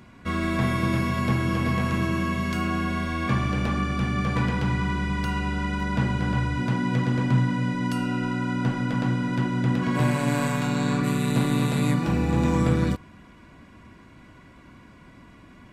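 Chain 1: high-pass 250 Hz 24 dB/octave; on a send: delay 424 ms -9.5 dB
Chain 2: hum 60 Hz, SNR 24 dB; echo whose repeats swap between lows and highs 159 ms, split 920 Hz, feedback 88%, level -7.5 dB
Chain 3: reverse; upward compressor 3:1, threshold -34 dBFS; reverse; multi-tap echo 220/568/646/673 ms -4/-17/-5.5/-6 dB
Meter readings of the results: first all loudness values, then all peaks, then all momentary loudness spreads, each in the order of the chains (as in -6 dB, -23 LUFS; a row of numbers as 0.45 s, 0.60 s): -29.0 LUFS, -23.5 LUFS, -21.0 LUFS; -14.5 dBFS, -7.5 dBFS, -6.0 dBFS; 4 LU, 12 LU, 20 LU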